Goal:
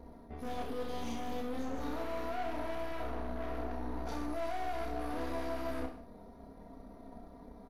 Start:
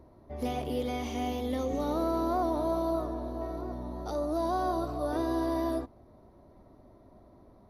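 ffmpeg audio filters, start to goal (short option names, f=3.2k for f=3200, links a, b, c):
-af "bandreject=f=1.1k:w=12,aecho=1:1:4.3:0.95,areverse,acompressor=threshold=-36dB:ratio=5,areverse,aeval=exprs='(tanh(126*val(0)+0.75)-tanh(0.75))/126':c=same,aecho=1:1:30|64.5|104.2|149.8|202.3:0.631|0.398|0.251|0.158|0.1,volume=4dB"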